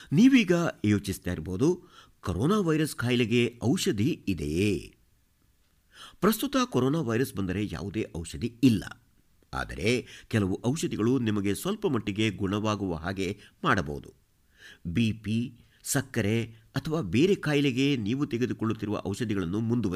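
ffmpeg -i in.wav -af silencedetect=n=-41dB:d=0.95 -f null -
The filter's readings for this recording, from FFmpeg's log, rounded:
silence_start: 4.88
silence_end: 5.98 | silence_duration: 1.10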